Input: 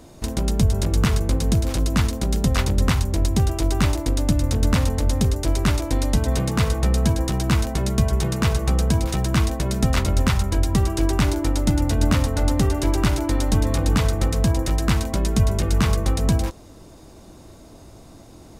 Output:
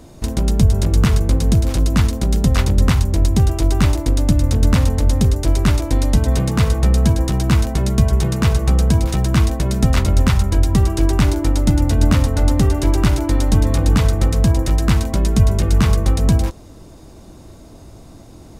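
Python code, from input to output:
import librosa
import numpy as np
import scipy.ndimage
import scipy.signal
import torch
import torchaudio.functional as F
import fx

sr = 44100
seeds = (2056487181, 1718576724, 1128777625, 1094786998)

y = fx.low_shelf(x, sr, hz=250.0, db=4.5)
y = y * librosa.db_to_amplitude(1.5)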